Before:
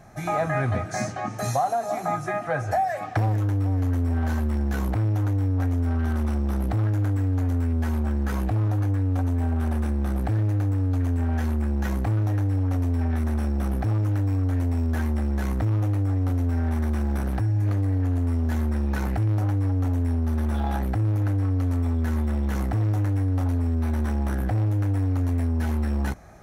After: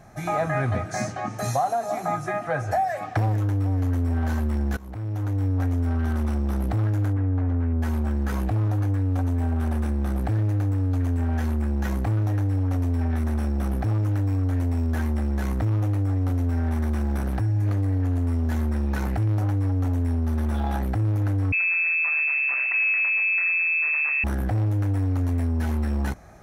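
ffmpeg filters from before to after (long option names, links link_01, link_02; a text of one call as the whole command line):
ffmpeg -i in.wav -filter_complex "[0:a]asplit=3[link_01][link_02][link_03];[link_01]afade=type=out:start_time=7.12:duration=0.02[link_04];[link_02]lowpass=2100,afade=type=in:start_time=7.12:duration=0.02,afade=type=out:start_time=7.81:duration=0.02[link_05];[link_03]afade=type=in:start_time=7.81:duration=0.02[link_06];[link_04][link_05][link_06]amix=inputs=3:normalize=0,asettb=1/sr,asplit=3[link_07][link_08][link_09];[link_07]atrim=end=21.524[link_10];[link_08]atrim=start=21.52:end=24.24,asetpts=PTS-STARTPTS,afade=type=in:duration=0.004:curve=qsin,afade=type=out:start_time=2.716:duration=0.004:curve=qsin,lowpass=frequency=2300:width_type=q:width=0.5098,lowpass=frequency=2300:width_type=q:width=0.6013,lowpass=frequency=2300:width_type=q:width=0.9,lowpass=frequency=2300:width_type=q:width=2.563,afreqshift=-2700[link_11];[link_09]atrim=start=24.236[link_12];[link_10][link_11]acrossfade=duration=0.004:curve1=hsin:curve2=qsin[link_13];[link_13][link_12]acrossfade=duration=0.004:curve1=qsin:curve2=hsin,asplit=2[link_14][link_15];[link_14]atrim=end=4.77,asetpts=PTS-STARTPTS,afade=type=out:start_time=4.766:duration=0.004:curve=hsin:silence=0.0841395[link_16];[link_15]atrim=start=4.77,asetpts=PTS-STARTPTS,afade=type=in:duration=0.69:silence=0.0841395[link_17];[link_16][link_17]concat=n=2:v=0:a=1" out.wav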